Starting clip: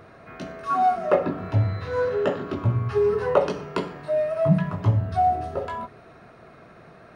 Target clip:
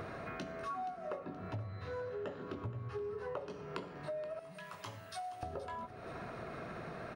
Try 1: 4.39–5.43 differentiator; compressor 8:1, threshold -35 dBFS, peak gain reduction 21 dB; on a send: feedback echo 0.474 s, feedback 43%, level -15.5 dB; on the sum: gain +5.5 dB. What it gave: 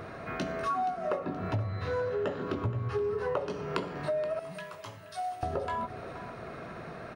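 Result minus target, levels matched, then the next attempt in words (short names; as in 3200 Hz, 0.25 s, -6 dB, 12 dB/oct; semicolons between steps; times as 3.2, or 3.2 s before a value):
compressor: peak gain reduction -10 dB
4.39–5.43 differentiator; compressor 8:1, threshold -46.5 dBFS, peak gain reduction 31 dB; on a send: feedback echo 0.474 s, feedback 43%, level -15.5 dB; on the sum: gain +5.5 dB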